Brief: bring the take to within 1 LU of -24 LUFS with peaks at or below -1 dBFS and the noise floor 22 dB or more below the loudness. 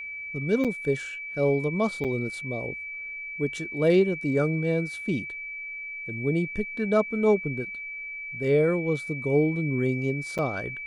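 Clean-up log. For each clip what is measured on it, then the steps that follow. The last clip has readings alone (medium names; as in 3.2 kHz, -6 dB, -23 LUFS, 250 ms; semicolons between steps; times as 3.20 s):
dropouts 3; longest dropout 7.1 ms; steady tone 2.3 kHz; tone level -34 dBFS; loudness -27.0 LUFS; peak level -10.5 dBFS; loudness target -24.0 LUFS
-> interpolate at 0.64/2.04/10.38 s, 7.1 ms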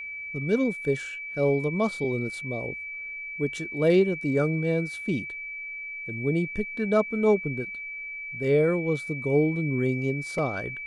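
dropouts 0; steady tone 2.3 kHz; tone level -34 dBFS
-> band-stop 2.3 kHz, Q 30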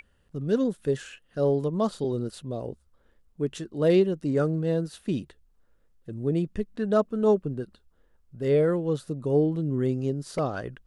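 steady tone not found; loudness -27.0 LUFS; peak level -11.0 dBFS; loudness target -24.0 LUFS
-> trim +3 dB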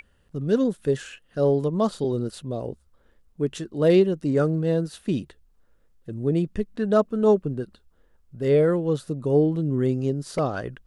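loudness -24.0 LUFS; peak level -8.0 dBFS; noise floor -62 dBFS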